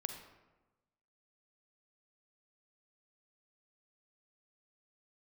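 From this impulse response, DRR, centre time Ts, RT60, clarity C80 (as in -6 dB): 5.5 dB, 24 ms, 1.1 s, 8.5 dB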